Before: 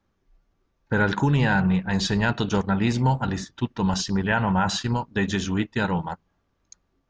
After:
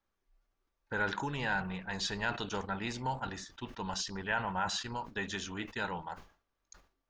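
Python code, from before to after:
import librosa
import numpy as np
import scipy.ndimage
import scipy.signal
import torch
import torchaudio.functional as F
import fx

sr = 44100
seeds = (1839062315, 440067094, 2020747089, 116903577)

y = fx.peak_eq(x, sr, hz=140.0, db=-12.5, octaves=2.7)
y = fx.sustainer(y, sr, db_per_s=140.0)
y = y * 10.0 ** (-8.0 / 20.0)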